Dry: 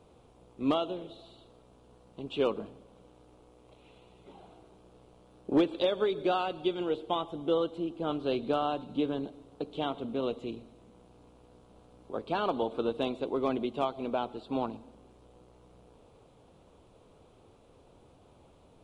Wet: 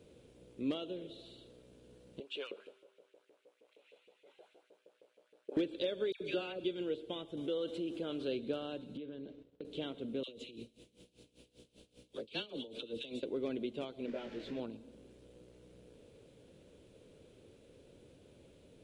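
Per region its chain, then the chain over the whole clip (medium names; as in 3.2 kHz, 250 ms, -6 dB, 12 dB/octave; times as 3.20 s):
2.20–5.57 s: LFO high-pass saw up 6.4 Hz 420–2600 Hz + feedback comb 56 Hz, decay 1.7 s, harmonics odd, mix 40% + tape noise reduction on one side only decoder only
6.12–6.64 s: peaking EQ 2.4 kHz +6.5 dB 0.28 oct + upward compressor, threshold -40 dBFS + phase dispersion lows, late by 88 ms, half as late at 1.6 kHz
7.37–8.28 s: bass shelf 370 Hz -8 dB + level flattener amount 50%
8.97–9.65 s: expander -47 dBFS + low-pass 4 kHz + compression 10:1, threshold -39 dBFS
10.23–13.23 s: resonant high shelf 2.2 kHz +9 dB, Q 1.5 + phase dispersion lows, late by 53 ms, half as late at 960 Hz + logarithmic tremolo 5.1 Hz, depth 20 dB
14.06–14.60 s: jump at every zero crossing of -36 dBFS + low-pass 3.4 kHz + detune thickener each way 15 cents
whole clip: bass shelf 78 Hz -8.5 dB; compression 1.5:1, threshold -46 dBFS; high-order bell 940 Hz -14 dB 1.1 oct; trim +1 dB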